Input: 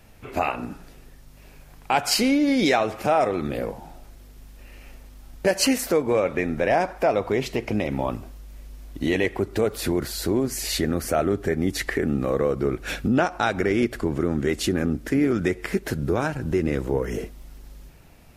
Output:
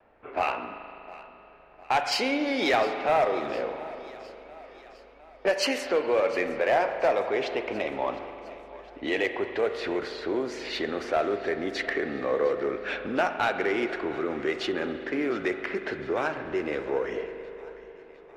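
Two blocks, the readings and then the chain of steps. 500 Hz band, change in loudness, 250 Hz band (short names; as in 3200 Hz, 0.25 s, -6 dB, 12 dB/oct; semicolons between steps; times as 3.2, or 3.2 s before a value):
-2.5 dB, -4.0 dB, -9.0 dB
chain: low-pass opened by the level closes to 1200 Hz, open at -16.5 dBFS; three-band isolator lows -21 dB, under 350 Hz, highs -16 dB, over 4900 Hz; in parallel at -6 dB: soft clip -26.5 dBFS, distortion -7 dB; on the sum: vibrato 0.55 Hz 17 cents; one-sided clip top -15.5 dBFS; on a send: thinning echo 0.708 s, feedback 56%, high-pass 170 Hz, level -19 dB; on the sum: spring tank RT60 3 s, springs 39 ms, chirp 30 ms, DRR 8 dB; gain -3 dB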